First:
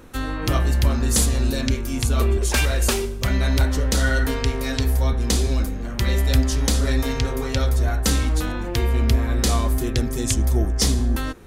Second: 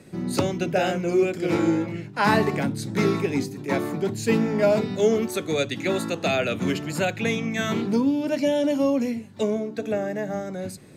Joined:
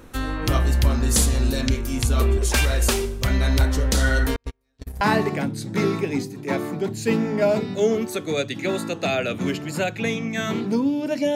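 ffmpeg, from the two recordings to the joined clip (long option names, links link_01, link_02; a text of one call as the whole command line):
ffmpeg -i cue0.wav -i cue1.wav -filter_complex "[0:a]asettb=1/sr,asplit=3[link_01][link_02][link_03];[link_01]atrim=end=4.364[link_04];[link_02]atrim=start=4.36:end=5.01,asetpts=PTS-STARTPTS,afade=type=in:duration=0.004:curve=qsin,afade=type=out:start_time=0.646:duration=0.004:curve=qsin,agate=range=-48dB:threshold=-17dB:ratio=16:release=100:detection=peak[link_05];[link_03]atrim=start=5.006[link_06];[link_04][link_05]acrossfade=duration=0.004:curve1=hsin:curve2=qsin[link_07];[link_07][link_06]acrossfade=duration=0.004:curve1=qsin:curve2=hsin,apad=whole_dur=11.35,atrim=end=11.35,atrim=end=5.012[link_08];[1:a]atrim=start=2.218:end=8.56[link_09];[link_08][link_09]acrossfade=duration=0.004:curve1=hsin:curve2=hsin" out.wav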